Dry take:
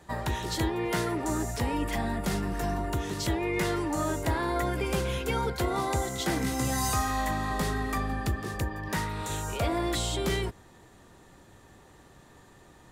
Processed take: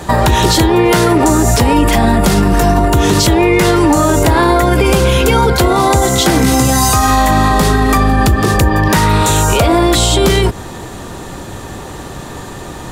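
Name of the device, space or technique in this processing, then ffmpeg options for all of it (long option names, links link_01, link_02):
mastering chain: -af "equalizer=frequency=1900:width_type=o:width=0.42:gain=-4,acompressor=threshold=-32dB:ratio=3,asoftclip=type=hard:threshold=-24.5dB,alimiter=level_in=28.5dB:limit=-1dB:release=50:level=0:latency=1,volume=-1dB"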